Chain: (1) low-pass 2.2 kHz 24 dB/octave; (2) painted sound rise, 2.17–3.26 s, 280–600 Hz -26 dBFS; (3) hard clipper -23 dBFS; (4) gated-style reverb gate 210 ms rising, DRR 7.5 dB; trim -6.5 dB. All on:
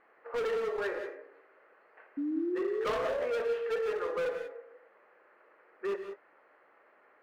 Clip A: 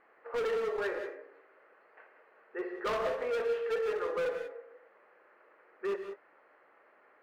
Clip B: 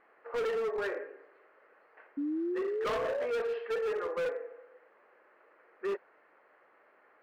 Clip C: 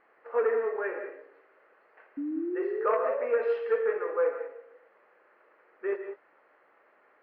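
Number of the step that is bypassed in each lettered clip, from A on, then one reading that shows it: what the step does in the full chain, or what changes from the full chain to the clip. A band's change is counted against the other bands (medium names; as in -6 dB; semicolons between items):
2, 250 Hz band -8.5 dB; 4, momentary loudness spread change -4 LU; 3, distortion -7 dB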